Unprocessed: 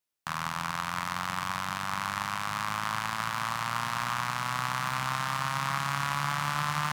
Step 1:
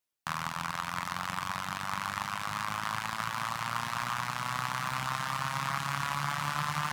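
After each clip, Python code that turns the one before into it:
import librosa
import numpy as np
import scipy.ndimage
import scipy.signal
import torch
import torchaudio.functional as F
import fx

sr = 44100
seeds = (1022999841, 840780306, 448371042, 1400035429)

y = fx.dereverb_blind(x, sr, rt60_s=0.75)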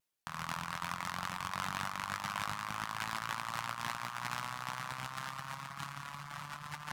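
y = fx.over_compress(x, sr, threshold_db=-37.0, ratio=-0.5)
y = fx.vibrato(y, sr, rate_hz=0.39, depth_cents=9.5)
y = y * 10.0 ** (-3.0 / 20.0)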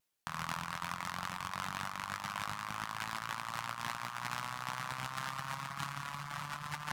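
y = fx.rider(x, sr, range_db=3, speed_s=0.5)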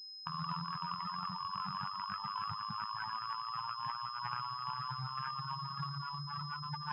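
y = fx.spec_expand(x, sr, power=3.4)
y = np.repeat(y[::3], 3)[:len(y)]
y = fx.pwm(y, sr, carrier_hz=5100.0)
y = y * 10.0 ** (1.0 / 20.0)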